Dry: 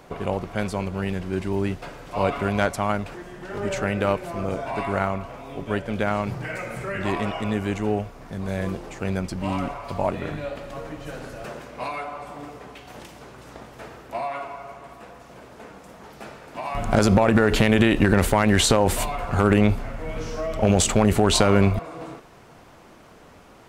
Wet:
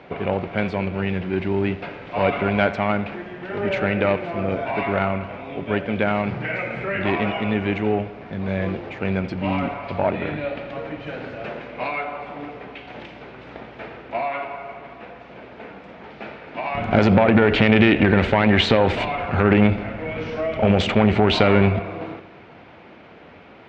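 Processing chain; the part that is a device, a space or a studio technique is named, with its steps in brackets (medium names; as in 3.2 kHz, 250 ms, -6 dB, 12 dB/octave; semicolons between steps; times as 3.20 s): analogue delay pedal into a guitar amplifier (bucket-brigade echo 83 ms, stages 2048, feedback 66%, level -18 dB; valve stage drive 11 dB, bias 0.35; cabinet simulation 85–3600 Hz, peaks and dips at 130 Hz -4 dB, 1.1 kHz -5 dB, 2.3 kHz +5 dB); trim +5.5 dB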